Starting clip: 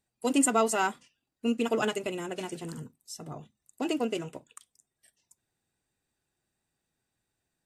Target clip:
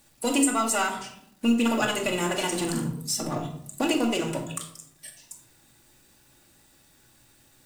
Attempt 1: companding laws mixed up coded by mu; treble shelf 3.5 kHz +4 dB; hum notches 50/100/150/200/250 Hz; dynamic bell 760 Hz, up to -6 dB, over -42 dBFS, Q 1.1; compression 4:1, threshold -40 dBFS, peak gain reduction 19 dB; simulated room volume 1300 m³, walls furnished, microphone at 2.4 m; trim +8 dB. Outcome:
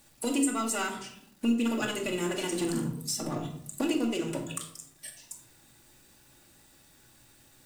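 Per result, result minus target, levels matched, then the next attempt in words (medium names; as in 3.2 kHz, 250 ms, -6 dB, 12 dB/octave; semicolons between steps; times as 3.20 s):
compression: peak gain reduction +6 dB; 1 kHz band -3.5 dB
companding laws mixed up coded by mu; treble shelf 3.5 kHz +4 dB; hum notches 50/100/150/200/250 Hz; dynamic bell 760 Hz, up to -6 dB, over -42 dBFS, Q 1.1; compression 4:1, threshold -32.5 dBFS, peak gain reduction 13.5 dB; simulated room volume 1300 m³, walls furnished, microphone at 2.4 m; trim +8 dB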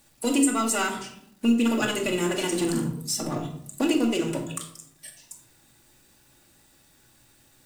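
1 kHz band -3.5 dB
companding laws mixed up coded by mu; treble shelf 3.5 kHz +4 dB; hum notches 50/100/150/200/250 Hz; dynamic bell 340 Hz, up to -6 dB, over -42 dBFS, Q 1.1; compression 4:1, threshold -32.5 dBFS, peak gain reduction 13 dB; simulated room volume 1300 m³, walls furnished, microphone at 2.4 m; trim +8 dB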